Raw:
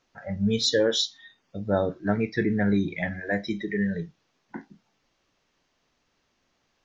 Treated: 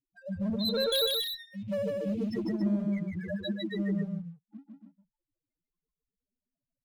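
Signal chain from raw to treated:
spectral peaks only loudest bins 1
dynamic equaliser 3,600 Hz, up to +7 dB, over −56 dBFS, Q 1.1
leveller curve on the samples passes 1
0:00.92–0:02.34: high shelf with overshoot 1,900 Hz +10 dB, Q 3
asymmetric clip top −25.5 dBFS, bottom −27.5 dBFS
loudspeakers that aren't time-aligned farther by 52 metres −2 dB, 96 metres −7 dB
level −1.5 dB

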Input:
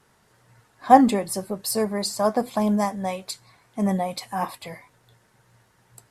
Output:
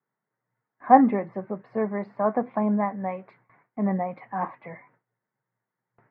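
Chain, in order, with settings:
Chebyshev band-pass filter 130–2,100 Hz, order 4
noise gate with hold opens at −47 dBFS
level −1.5 dB

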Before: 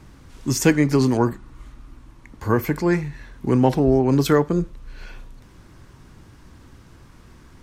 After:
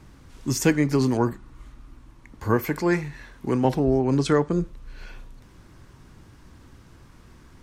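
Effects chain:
speech leveller within 3 dB 0.5 s
0:02.57–0:03.65: low-shelf EQ 250 Hz −7 dB
0:04.19–0:04.62: Butterworth low-pass 9,800 Hz 48 dB per octave
level −1.5 dB

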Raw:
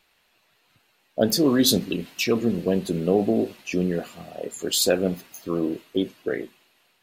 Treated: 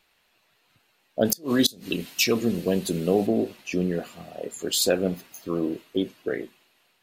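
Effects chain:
0:01.25–0:03.27: high-shelf EQ 3,400 Hz +10 dB
gate with flip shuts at −6 dBFS, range −28 dB
level −1.5 dB

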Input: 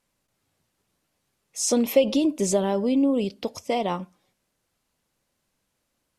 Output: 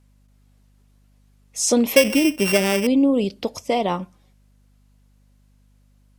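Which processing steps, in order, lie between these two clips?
0:01.96–0:02.87: samples sorted by size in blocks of 16 samples
mains hum 50 Hz, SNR 34 dB
level +4 dB

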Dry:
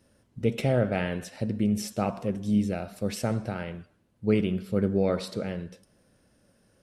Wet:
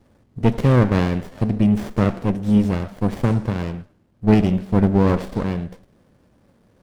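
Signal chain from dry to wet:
windowed peak hold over 33 samples
level +8.5 dB

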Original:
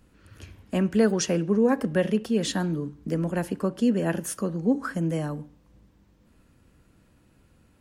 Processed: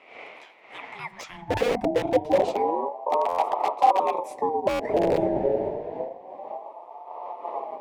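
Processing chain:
wind on the microphone 580 Hz −36 dBFS
flanger 1.9 Hz, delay 7 ms, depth 5 ms, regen −54%
high-pass filter sweep 1,400 Hz → 62 Hz, 0:01.28–0:02.03
in parallel at 0 dB: downward compressor 16 to 1, threshold −34 dBFS, peak gain reduction 18 dB
on the sum: dynamic equaliser 440 Hz, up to +3 dB, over −33 dBFS, Q 1.8
wrap-around overflow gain 18 dB
RIAA equalisation playback
reversed playback
upward compression, threshold −36 dBFS
reversed playback
Chebyshev band-stop filter 390–1,400 Hz, order 2
buffer that repeats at 0:03.28/0:04.69, samples 512, times 8
ring modulator whose carrier an LFO sweeps 640 Hz, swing 25%, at 0.28 Hz
level −1.5 dB

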